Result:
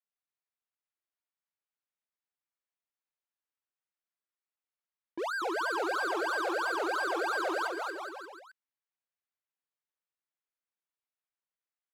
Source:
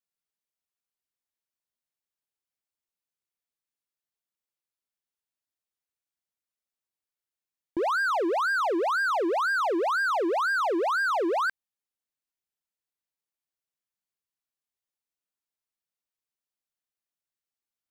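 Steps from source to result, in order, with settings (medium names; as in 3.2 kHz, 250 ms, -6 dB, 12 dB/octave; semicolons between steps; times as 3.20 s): level-controlled noise filter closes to 1.8 kHz, open at -24 dBFS; high-pass 690 Hz 6 dB/octave; treble shelf 2.7 kHz +8 dB; peak limiter -27.5 dBFS, peak gain reduction 7 dB; bouncing-ball echo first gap 340 ms, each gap 0.85×, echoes 5; tempo 1.5×; trim -2 dB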